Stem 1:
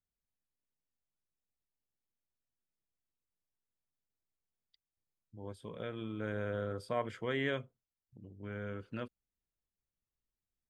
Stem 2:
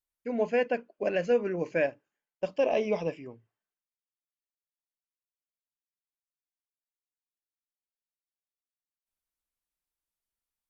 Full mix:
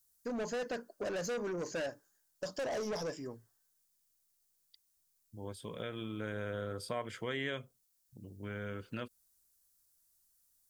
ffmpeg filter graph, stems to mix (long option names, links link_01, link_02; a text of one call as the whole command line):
ffmpeg -i stem1.wav -i stem2.wav -filter_complex "[0:a]highshelf=frequency=3000:gain=10,volume=2dB[link_01];[1:a]highshelf=frequency=2000:width_type=q:width=3:gain=-6,aexciter=amount=14.3:drive=3.4:freq=3800,asoftclip=type=tanh:threshold=-31.5dB,volume=1.5dB[link_02];[link_01][link_02]amix=inputs=2:normalize=0,acompressor=threshold=-38dB:ratio=2" out.wav